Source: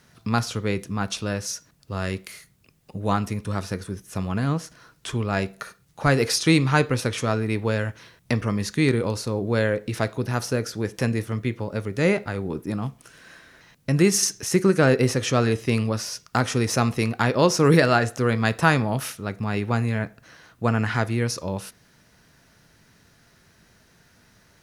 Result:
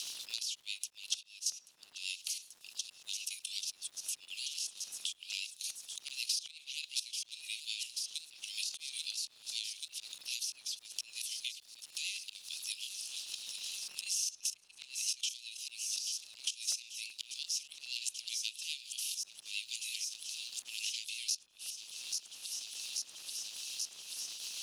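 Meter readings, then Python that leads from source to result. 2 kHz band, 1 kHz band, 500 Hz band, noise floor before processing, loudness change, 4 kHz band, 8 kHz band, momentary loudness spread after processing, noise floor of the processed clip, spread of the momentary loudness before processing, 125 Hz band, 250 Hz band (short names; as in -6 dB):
-19.0 dB, under -40 dB, under -40 dB, -59 dBFS, -15.0 dB, -3.5 dB, -4.5 dB, 7 LU, -63 dBFS, 13 LU, under -40 dB, under -40 dB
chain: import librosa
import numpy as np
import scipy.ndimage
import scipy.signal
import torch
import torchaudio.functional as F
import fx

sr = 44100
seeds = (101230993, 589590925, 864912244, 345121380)

p1 = fx.cheby_harmonics(x, sr, harmonics=(2, 8), levels_db=(-13, -23), full_scale_db=-3.0)
p2 = fx.rotary(p1, sr, hz=8.0)
p3 = scipy.signal.sosfilt(scipy.signal.butter(2, 12000.0, 'lowpass', fs=sr, output='sos'), p2)
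p4 = fx.level_steps(p3, sr, step_db=16)
p5 = p4 + fx.echo_wet_highpass(p4, sr, ms=835, feedback_pct=73, hz=4100.0, wet_db=-13.0, dry=0)
p6 = fx.auto_swell(p5, sr, attack_ms=264.0)
p7 = scipy.signal.sosfilt(scipy.signal.butter(12, 2700.0, 'highpass', fs=sr, output='sos'), p6)
p8 = fx.dmg_crackle(p7, sr, seeds[0], per_s=270.0, level_db=-68.0)
p9 = fx.buffer_crackle(p8, sr, first_s=0.38, period_s=0.38, block=64, kind='repeat')
p10 = fx.band_squash(p9, sr, depth_pct=100)
y = p10 * 10.0 ** (9.0 / 20.0)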